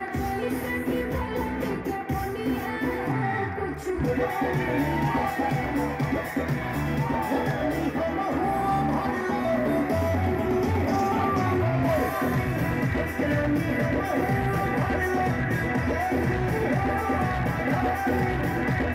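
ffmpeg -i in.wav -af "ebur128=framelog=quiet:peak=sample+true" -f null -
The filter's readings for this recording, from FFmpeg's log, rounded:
Integrated loudness:
  I:         -26.0 LUFS
  Threshold: -35.9 LUFS
Loudness range:
  LRA:         3.2 LU
  Threshold: -45.8 LUFS
  LRA low:   -27.9 LUFS
  LRA high:  -24.7 LUFS
Sample peak:
  Peak:      -15.1 dBFS
True peak:
  Peak:      -15.1 dBFS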